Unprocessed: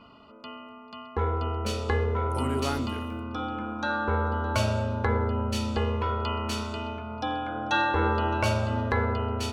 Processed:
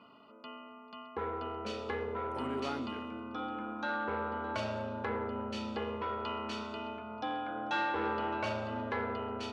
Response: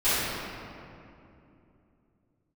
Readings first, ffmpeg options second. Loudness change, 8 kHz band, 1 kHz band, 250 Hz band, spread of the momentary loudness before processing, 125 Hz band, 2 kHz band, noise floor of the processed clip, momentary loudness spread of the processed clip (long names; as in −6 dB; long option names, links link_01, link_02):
−8.5 dB, −16.5 dB, −6.5 dB, −8.0 dB, 9 LU, −18.5 dB, −7.5 dB, −54 dBFS, 8 LU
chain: -af "asoftclip=type=tanh:threshold=-21dB,highpass=190,lowpass=4000,volume=-5dB"